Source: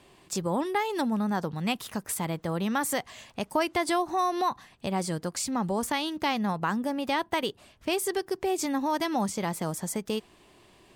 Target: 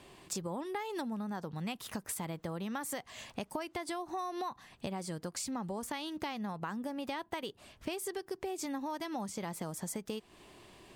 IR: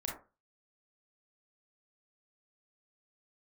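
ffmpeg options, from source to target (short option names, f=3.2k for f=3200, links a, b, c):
-af "acompressor=threshold=-37dB:ratio=6,volume=1dB"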